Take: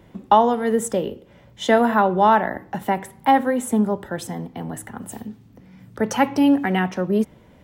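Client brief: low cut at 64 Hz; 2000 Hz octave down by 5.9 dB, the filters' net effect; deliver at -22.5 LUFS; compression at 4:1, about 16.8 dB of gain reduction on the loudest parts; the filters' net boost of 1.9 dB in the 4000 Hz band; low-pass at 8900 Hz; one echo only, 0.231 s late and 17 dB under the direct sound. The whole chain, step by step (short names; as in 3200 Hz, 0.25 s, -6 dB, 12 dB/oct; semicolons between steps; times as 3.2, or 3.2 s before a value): HPF 64 Hz; LPF 8900 Hz; bell 2000 Hz -9 dB; bell 4000 Hz +7 dB; compressor 4:1, threshold -32 dBFS; echo 0.231 s -17 dB; gain +12.5 dB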